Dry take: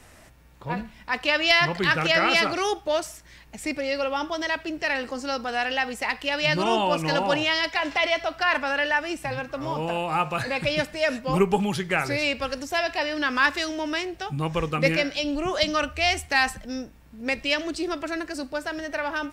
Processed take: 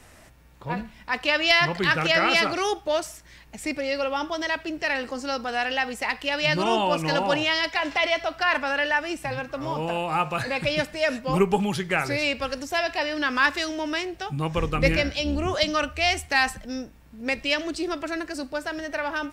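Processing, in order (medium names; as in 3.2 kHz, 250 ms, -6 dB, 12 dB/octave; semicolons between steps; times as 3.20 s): 14.56–15.55 s: octave divider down 2 oct, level 0 dB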